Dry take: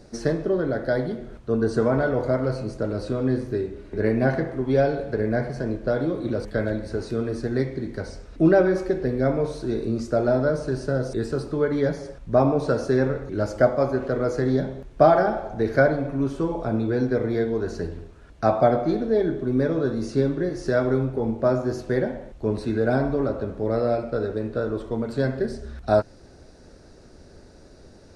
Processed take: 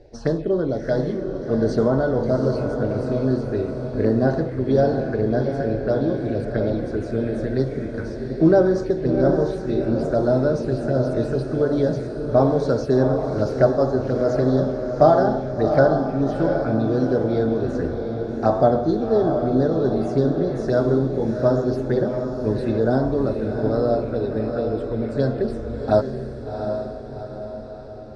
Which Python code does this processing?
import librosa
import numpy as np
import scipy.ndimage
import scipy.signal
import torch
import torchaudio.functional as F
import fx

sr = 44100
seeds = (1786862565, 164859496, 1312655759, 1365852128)

y = fx.env_lowpass(x, sr, base_hz=2300.0, full_db=-19.5)
y = fx.env_phaser(y, sr, low_hz=190.0, high_hz=2300.0, full_db=-19.0)
y = fx.echo_diffused(y, sr, ms=736, feedback_pct=53, wet_db=-6)
y = y * librosa.db_to_amplitude(2.5)